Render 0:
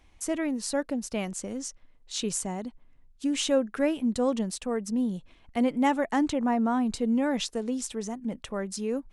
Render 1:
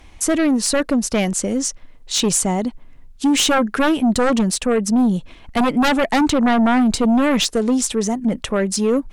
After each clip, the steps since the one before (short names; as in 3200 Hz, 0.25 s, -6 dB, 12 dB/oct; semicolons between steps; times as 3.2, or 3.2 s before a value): sine folder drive 11 dB, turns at -12 dBFS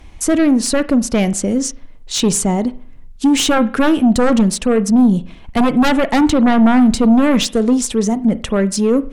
low shelf 410 Hz +6 dB; on a send at -15 dB: reverb, pre-delay 40 ms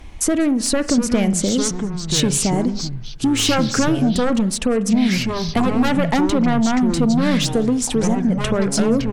compressor, threshold -17 dBFS, peak gain reduction 9 dB; outdoor echo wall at 33 m, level -23 dB; echoes that change speed 0.604 s, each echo -5 st, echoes 2, each echo -6 dB; gain +1.5 dB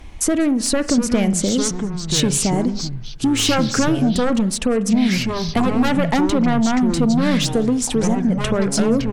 nothing audible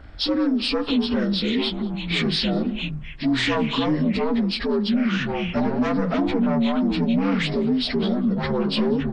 inharmonic rescaling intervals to 81%; in parallel at 0 dB: limiter -15.5 dBFS, peak gain reduction 8 dB; on the sum: gain -7 dB